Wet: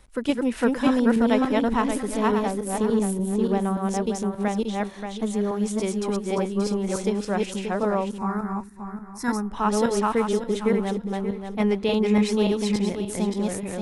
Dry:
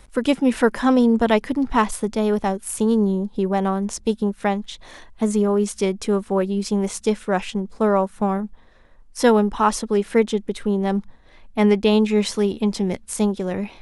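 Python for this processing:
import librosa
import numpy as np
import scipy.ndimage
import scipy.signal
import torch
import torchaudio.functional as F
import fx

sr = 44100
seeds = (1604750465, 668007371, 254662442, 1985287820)

y = fx.reverse_delay_fb(x, sr, ms=290, feedback_pct=48, wet_db=-0.5)
y = fx.fixed_phaser(y, sr, hz=1300.0, stages=4, at=(8.18, 9.51))
y = F.gain(torch.from_numpy(y), -6.5).numpy()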